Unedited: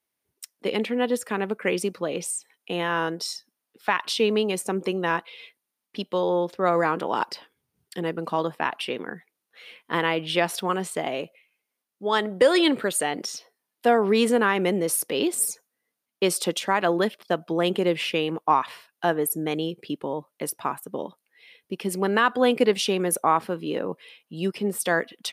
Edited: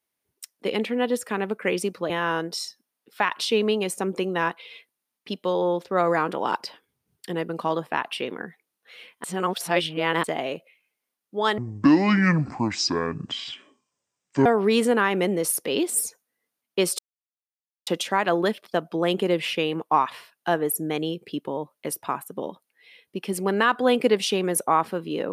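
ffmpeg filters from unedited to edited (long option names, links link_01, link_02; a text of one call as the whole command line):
ffmpeg -i in.wav -filter_complex "[0:a]asplit=7[link_01][link_02][link_03][link_04][link_05][link_06][link_07];[link_01]atrim=end=2.102[link_08];[link_02]atrim=start=2.778:end=9.922[link_09];[link_03]atrim=start=9.918:end=10.922,asetpts=PTS-STARTPTS,areverse[link_10];[link_04]atrim=start=10.918:end=12.264[link_11];[link_05]atrim=start=12.26:end=13.9,asetpts=PTS-STARTPTS,asetrate=25137,aresample=44100,atrim=end_sample=126884,asetpts=PTS-STARTPTS[link_12];[link_06]atrim=start=13.896:end=16.43,asetpts=PTS-STARTPTS,afade=type=out:start_time=2.53:duration=0.004:curve=hsin,apad=pad_dur=0.88[link_13];[link_07]atrim=start=16.43,asetpts=PTS-STARTPTS,afade=type=in:duration=0.004:curve=hsin[link_14];[link_08][link_09]acrossfade=duration=0.004:curve1=hsin:curve2=hsin[link_15];[link_15][link_10]acrossfade=duration=0.004:curve1=hsin:curve2=hsin[link_16];[link_16][link_11]acrossfade=duration=0.004:curve1=hsin:curve2=hsin[link_17];[link_17][link_12]acrossfade=duration=0.004:curve1=hsin:curve2=hsin[link_18];[link_13][link_14]concat=n=2:v=0:a=1[link_19];[link_18][link_19]acrossfade=duration=0.004:curve1=hsin:curve2=hsin" out.wav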